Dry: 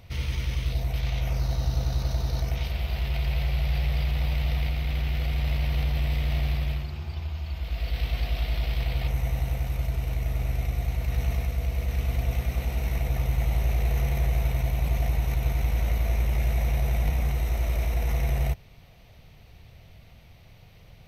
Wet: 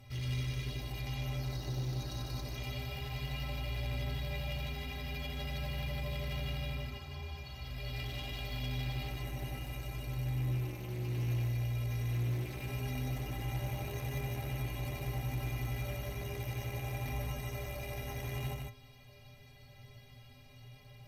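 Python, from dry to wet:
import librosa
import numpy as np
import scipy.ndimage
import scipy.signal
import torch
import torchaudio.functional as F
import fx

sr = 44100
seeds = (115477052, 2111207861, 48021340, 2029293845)

p1 = 10.0 ** (-28.5 / 20.0) * (np.abs((x / 10.0 ** (-28.5 / 20.0) + 3.0) % 4.0 - 2.0) - 1.0)
p2 = x + (p1 * 10.0 ** (-11.0 / 20.0))
p3 = fx.stiff_resonator(p2, sr, f0_hz=120.0, decay_s=0.4, stiffness=0.03)
p4 = fx.cheby_harmonics(p3, sr, harmonics=(5,), levels_db=(-14,), full_scale_db=-29.5)
y = p4 + 10.0 ** (-3.0 / 20.0) * np.pad(p4, (int(151 * sr / 1000.0), 0))[:len(p4)]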